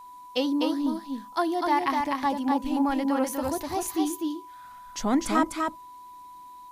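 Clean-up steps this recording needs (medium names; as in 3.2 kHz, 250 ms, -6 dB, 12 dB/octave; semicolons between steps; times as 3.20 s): band-stop 990 Hz, Q 30; expander -38 dBFS, range -21 dB; inverse comb 250 ms -3.5 dB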